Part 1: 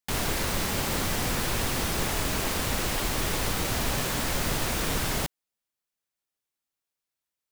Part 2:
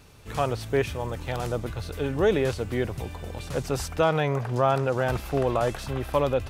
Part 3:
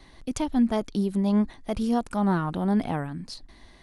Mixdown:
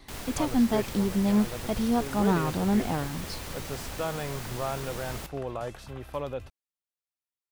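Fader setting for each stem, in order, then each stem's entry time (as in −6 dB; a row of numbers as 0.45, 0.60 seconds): −11.0, −10.0, −1.0 decibels; 0.00, 0.00, 0.00 seconds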